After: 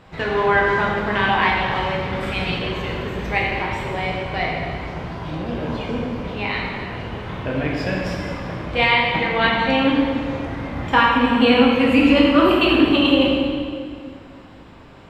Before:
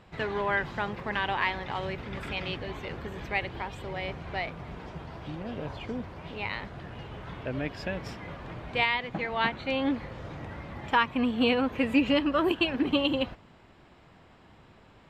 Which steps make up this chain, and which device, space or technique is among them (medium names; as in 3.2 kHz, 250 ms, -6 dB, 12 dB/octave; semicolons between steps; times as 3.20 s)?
stairwell (reverberation RT60 2.1 s, pre-delay 9 ms, DRR -3.5 dB); trim +6 dB